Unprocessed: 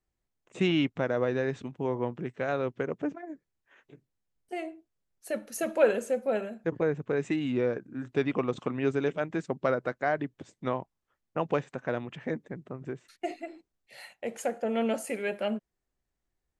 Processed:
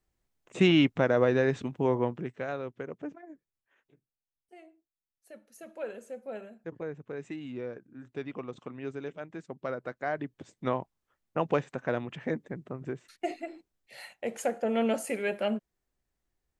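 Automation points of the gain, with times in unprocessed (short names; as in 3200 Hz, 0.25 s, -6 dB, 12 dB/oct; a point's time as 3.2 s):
1.94 s +4 dB
2.65 s -7 dB
3.31 s -7 dB
4.54 s -17 dB
5.59 s -17 dB
6.43 s -10 dB
9.44 s -10 dB
10.69 s +1 dB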